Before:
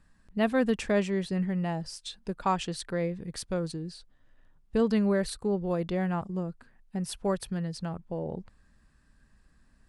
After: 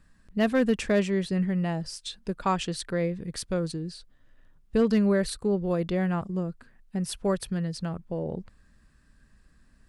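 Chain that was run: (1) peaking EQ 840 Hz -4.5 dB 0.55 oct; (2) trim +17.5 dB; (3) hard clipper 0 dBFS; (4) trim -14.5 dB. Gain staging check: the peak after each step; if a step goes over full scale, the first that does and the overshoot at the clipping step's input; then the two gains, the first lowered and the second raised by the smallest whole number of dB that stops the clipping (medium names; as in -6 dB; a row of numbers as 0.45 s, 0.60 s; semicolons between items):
-14.0 dBFS, +3.5 dBFS, 0.0 dBFS, -14.5 dBFS; step 2, 3.5 dB; step 2 +13.5 dB, step 4 -10.5 dB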